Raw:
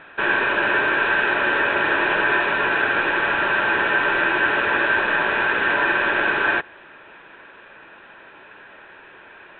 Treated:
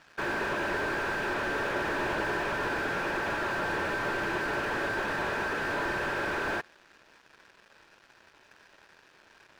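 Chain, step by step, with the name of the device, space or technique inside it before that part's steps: early transistor amplifier (crossover distortion -45 dBFS; slew-rate limiter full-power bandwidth 86 Hz); trim -6 dB

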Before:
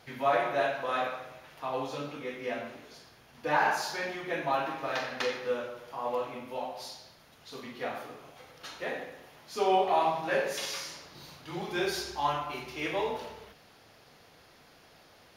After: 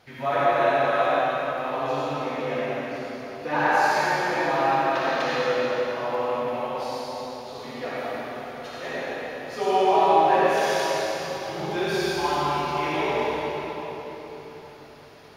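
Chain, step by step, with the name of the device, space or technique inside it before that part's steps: swimming-pool hall (reverberation RT60 4.3 s, pre-delay 55 ms, DRR -7.5 dB; treble shelf 5.4 kHz -5 dB)

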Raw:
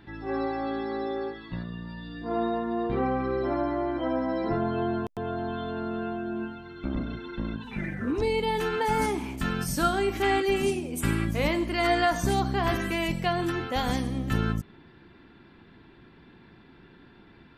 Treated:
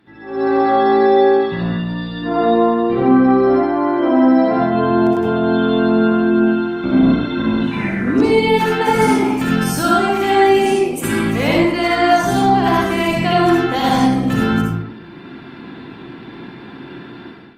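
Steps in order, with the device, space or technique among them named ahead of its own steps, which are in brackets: 3.50–4.67 s: peaking EQ 82 Hz -13.5 dB 1.1 oct; far-field microphone of a smart speaker (reverberation RT60 0.80 s, pre-delay 58 ms, DRR -4 dB; high-pass 140 Hz 12 dB/octave; level rider gain up to 15 dB; trim -1.5 dB; Opus 32 kbps 48 kHz)

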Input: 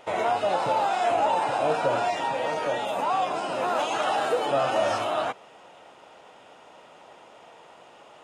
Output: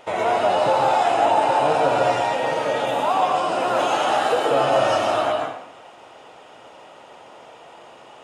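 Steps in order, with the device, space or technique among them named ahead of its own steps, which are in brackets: bathroom (reverberation RT60 0.70 s, pre-delay 118 ms, DRR 1.5 dB); trim +3 dB

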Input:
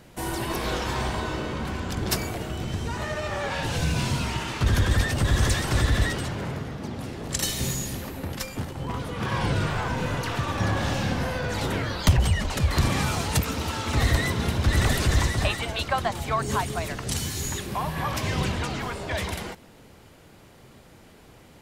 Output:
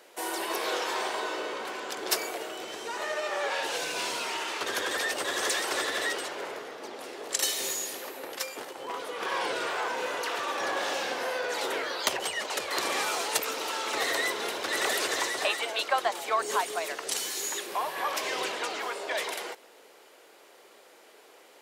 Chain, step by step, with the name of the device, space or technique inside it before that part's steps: Chebyshev high-pass 410 Hz, order 3; low shelf boost with a cut just above (bass shelf 70 Hz +8 dB; peaking EQ 180 Hz -3 dB 0.86 oct)

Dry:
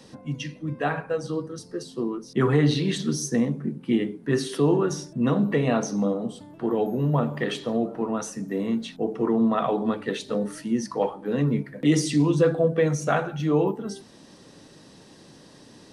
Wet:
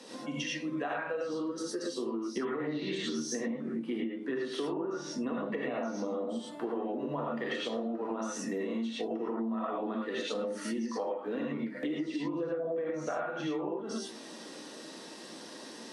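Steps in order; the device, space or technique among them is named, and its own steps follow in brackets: high-pass 250 Hz 24 dB/octave; low-pass that closes with the level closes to 1.5 kHz, closed at -18.5 dBFS; gated-style reverb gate 130 ms rising, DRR -4.5 dB; serial compression, leveller first (compression 2:1, threshold -22 dBFS, peak gain reduction 6.5 dB; compression, threshold -32 dBFS, peak gain reduction 14 dB)

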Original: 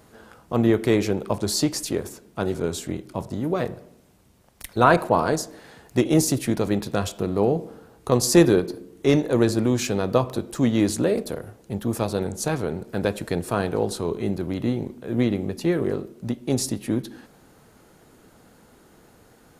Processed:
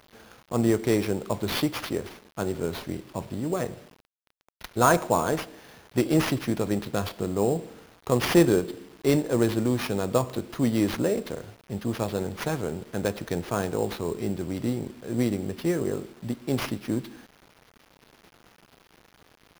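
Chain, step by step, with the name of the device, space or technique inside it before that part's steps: early 8-bit sampler (sample-rate reducer 7.9 kHz, jitter 0%; bit crusher 8-bit); trim -3.5 dB

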